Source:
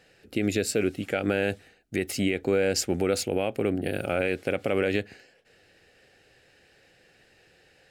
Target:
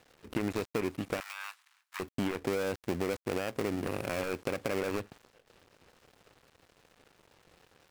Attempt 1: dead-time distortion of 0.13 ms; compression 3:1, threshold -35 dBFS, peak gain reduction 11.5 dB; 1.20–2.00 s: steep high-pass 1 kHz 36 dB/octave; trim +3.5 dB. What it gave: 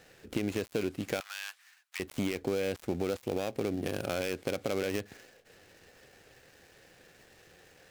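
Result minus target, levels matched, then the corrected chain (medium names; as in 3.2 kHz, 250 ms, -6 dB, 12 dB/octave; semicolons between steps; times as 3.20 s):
dead-time distortion: distortion -6 dB
dead-time distortion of 0.33 ms; compression 3:1, threshold -35 dBFS, peak gain reduction 11.5 dB; 1.20–2.00 s: steep high-pass 1 kHz 36 dB/octave; trim +3.5 dB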